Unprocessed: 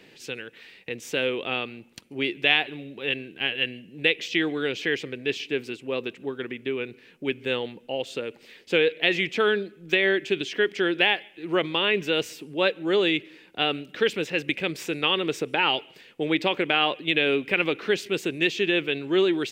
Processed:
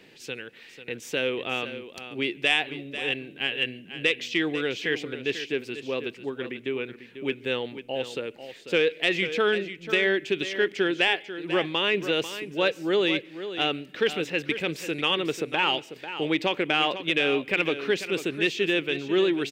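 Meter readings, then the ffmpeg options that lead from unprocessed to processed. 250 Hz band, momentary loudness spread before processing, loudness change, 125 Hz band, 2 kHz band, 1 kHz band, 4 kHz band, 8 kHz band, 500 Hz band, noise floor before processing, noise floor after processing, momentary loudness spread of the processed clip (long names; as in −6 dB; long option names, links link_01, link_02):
−1.0 dB, 11 LU, −1.0 dB, −1.0 dB, −1.0 dB, −1.0 dB, −1.5 dB, 0.0 dB, −1.0 dB, −53 dBFS, −49 dBFS, 10 LU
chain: -af "asoftclip=type=tanh:threshold=-7dB,aecho=1:1:493:0.266,volume=-1dB"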